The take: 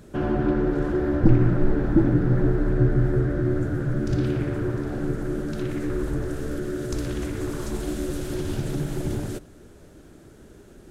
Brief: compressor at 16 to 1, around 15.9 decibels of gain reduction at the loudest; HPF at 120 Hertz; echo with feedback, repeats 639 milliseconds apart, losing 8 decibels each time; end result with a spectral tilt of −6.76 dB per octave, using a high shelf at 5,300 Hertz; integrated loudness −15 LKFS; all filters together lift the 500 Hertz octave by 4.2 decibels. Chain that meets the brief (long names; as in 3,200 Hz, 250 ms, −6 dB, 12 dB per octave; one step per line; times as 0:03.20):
high-pass filter 120 Hz
parametric band 500 Hz +6.5 dB
high-shelf EQ 5,300 Hz +6.5 dB
downward compressor 16 to 1, threshold −27 dBFS
repeating echo 639 ms, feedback 40%, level −8 dB
level +16.5 dB